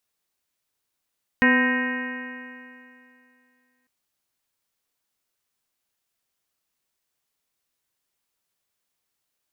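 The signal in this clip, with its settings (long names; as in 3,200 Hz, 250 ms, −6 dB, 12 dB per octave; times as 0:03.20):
stiff-string partials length 2.45 s, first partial 249 Hz, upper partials −8/−15/−8.5/−19/−6/1/−12.5/−13/−19 dB, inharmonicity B 0.003, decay 2.56 s, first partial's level −17.5 dB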